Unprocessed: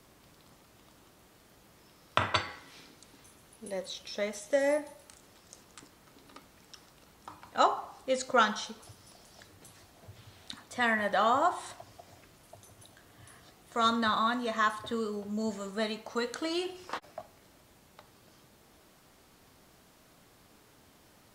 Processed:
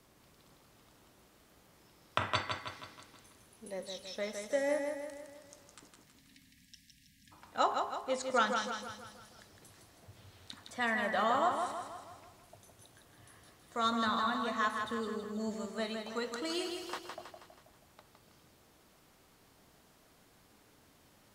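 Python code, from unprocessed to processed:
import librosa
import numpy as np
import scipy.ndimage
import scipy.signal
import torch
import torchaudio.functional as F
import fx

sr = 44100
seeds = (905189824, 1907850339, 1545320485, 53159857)

y = fx.spec_erase(x, sr, start_s=6.03, length_s=1.29, low_hz=290.0, high_hz=1600.0)
y = fx.high_shelf(y, sr, hz=5000.0, db=9.5, at=(16.45, 17.04))
y = fx.echo_feedback(y, sr, ms=161, feedback_pct=50, wet_db=-5.5)
y = y * 10.0 ** (-5.0 / 20.0)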